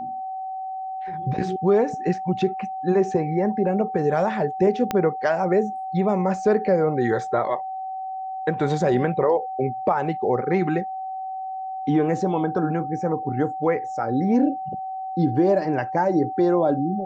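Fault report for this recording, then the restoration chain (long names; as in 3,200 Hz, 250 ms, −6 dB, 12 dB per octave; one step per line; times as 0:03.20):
whistle 760 Hz −28 dBFS
0:04.91: click −9 dBFS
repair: click removal
notch filter 760 Hz, Q 30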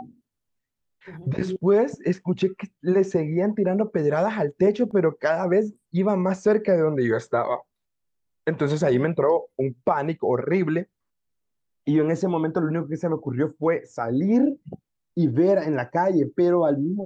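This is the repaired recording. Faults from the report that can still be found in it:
0:04.91: click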